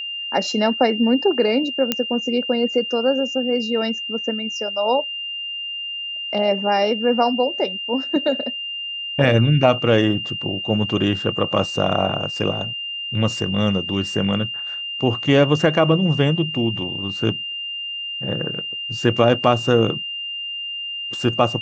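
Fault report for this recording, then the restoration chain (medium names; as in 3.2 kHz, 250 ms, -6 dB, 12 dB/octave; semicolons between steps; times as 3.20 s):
whine 2.8 kHz -26 dBFS
1.92 s: pop -3 dBFS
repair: de-click; band-stop 2.8 kHz, Q 30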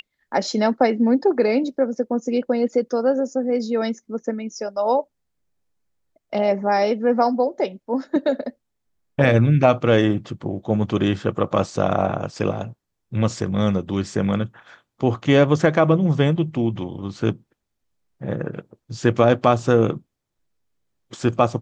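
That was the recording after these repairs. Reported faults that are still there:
nothing left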